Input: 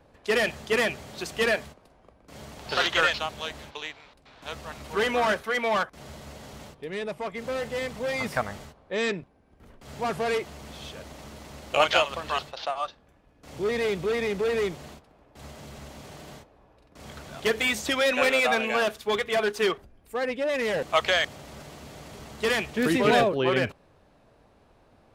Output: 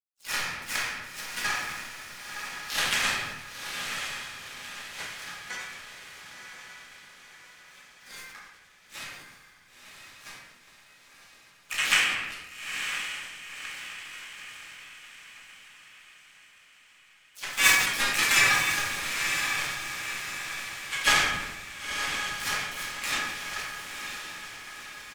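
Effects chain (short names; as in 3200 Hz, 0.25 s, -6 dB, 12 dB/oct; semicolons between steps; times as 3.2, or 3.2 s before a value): spectral delay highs early, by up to 0.113 s; gate -54 dBFS, range -7 dB; rippled Chebyshev high-pass 1600 Hz, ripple 6 dB; high shelf 4100 Hz +11.5 dB; power-law curve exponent 3; in parallel at -4.5 dB: overloaded stage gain 30 dB; on the sum: diffused feedback echo 0.99 s, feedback 51%, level -6 dB; shoebox room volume 530 m³, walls mixed, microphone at 2.3 m; harmoniser -12 st -11 dB, -5 st -3 dB; sustainer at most 50 dB/s; gain +7.5 dB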